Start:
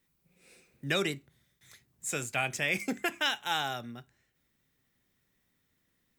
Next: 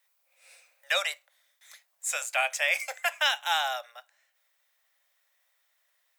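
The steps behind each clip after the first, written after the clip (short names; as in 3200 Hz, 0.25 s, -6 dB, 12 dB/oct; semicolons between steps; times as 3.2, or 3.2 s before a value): steep high-pass 540 Hz 96 dB/oct; gain +4.5 dB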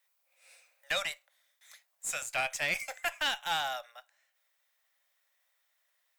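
one diode to ground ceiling -20.5 dBFS; gain -3.5 dB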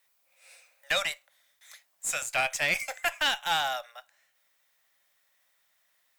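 companded quantiser 8-bit; gain +4.5 dB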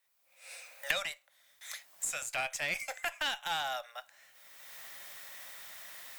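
recorder AGC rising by 26 dB/s; gain -7.5 dB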